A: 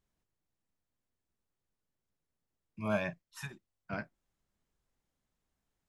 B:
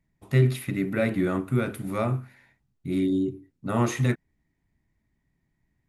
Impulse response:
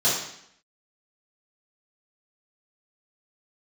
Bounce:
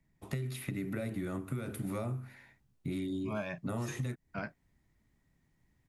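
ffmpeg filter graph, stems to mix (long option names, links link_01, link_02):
-filter_complex "[0:a]adelay=450,volume=1dB[link_01];[1:a]acrossover=split=120|800|5000[link_02][link_03][link_04][link_05];[link_02]acompressor=threshold=-34dB:ratio=4[link_06];[link_03]acompressor=threshold=-33dB:ratio=4[link_07];[link_04]acompressor=threshold=-45dB:ratio=4[link_08];[link_05]acompressor=threshold=-45dB:ratio=4[link_09];[link_06][link_07][link_08][link_09]amix=inputs=4:normalize=0,volume=0.5dB[link_10];[link_01][link_10]amix=inputs=2:normalize=0,acompressor=threshold=-33dB:ratio=6"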